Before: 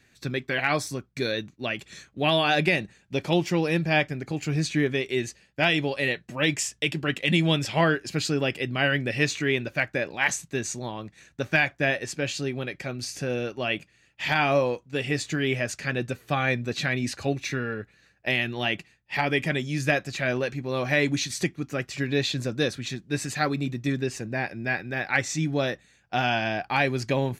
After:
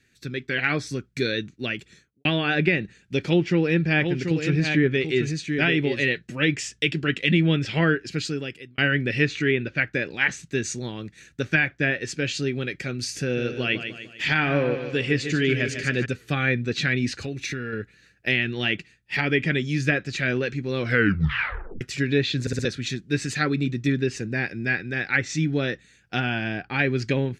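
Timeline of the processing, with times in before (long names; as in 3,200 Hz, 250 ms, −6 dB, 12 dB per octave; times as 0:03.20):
0:01.58–0:02.25: fade out and dull
0:03.22–0:06.18: single-tap delay 735 ms −6.5 dB
0:07.87–0:08.78: fade out
0:09.51–0:09.93: low-pass filter 4,200 Hz
0:13.22–0:16.06: repeating echo 149 ms, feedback 46%, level −9 dB
0:17.15–0:17.73: downward compressor 4 to 1, threshold −30 dBFS
0:20.79: tape stop 1.02 s
0:22.41: stutter in place 0.06 s, 4 plays
0:26.20–0:26.79: head-to-tape spacing loss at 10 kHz 20 dB
whole clip: treble cut that deepens with the level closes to 2,300 Hz, closed at −19 dBFS; flat-topped bell 810 Hz −10.5 dB 1.2 octaves; automatic gain control gain up to 7 dB; level −3 dB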